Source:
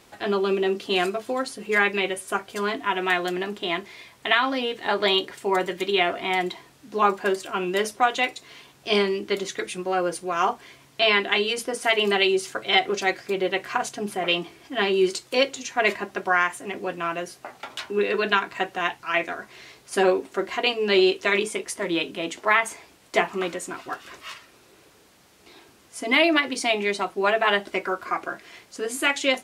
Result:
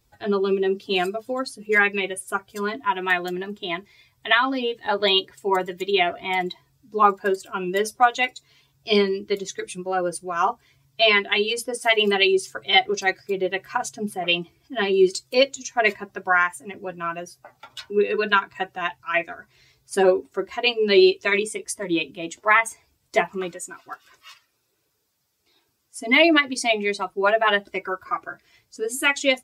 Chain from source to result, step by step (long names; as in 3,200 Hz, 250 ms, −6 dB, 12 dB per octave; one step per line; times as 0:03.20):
spectral dynamics exaggerated over time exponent 1.5
0:23.51–0:25.98: high-pass filter 380 Hz 6 dB per octave
level +5 dB